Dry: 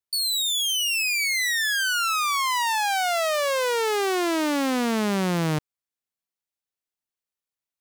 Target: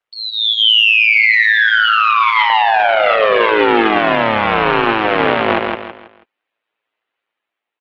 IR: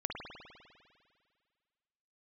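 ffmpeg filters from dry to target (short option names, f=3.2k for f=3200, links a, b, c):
-filter_complex "[0:a]asettb=1/sr,asplit=3[a][b][c];[a]atrim=end=0.814[d];[b]atrim=start=0.81:end=1.53,asetpts=PTS-STARTPTS,afade=t=in:d=0.004:c=qsin,afade=t=out:st=0.716:d=0.004:c=qsin,asoftclip=type=hard:threshold=-20.5dB[e];[c]atrim=start=1.526[f];[d][e]acrossfade=d=0.004:c1=hsin:c2=qsin[g];[g][f]acrossfade=d=0.004:c1=qsin:c2=hsin,flanger=delay=1.3:depth=2.6:regen=-45:speed=0.5:shape=triangular,dynaudnorm=f=170:g=7:m=4.5dB,highpass=f=470:t=q:w=0.5412,highpass=f=470:t=q:w=1.307,lowpass=f=3.2k:t=q:w=0.5176,lowpass=f=3.2k:t=q:w=0.7071,lowpass=f=3.2k:t=q:w=1.932,afreqshift=-110,acontrast=30,tremolo=f=110:d=0.947,aecho=1:1:162|324|486|648:0.355|0.121|0.041|0.0139,alimiter=level_in=21dB:limit=-1dB:release=50:level=0:latency=1,volume=-2dB" -ar 48000 -c:a libopus -b:a 16k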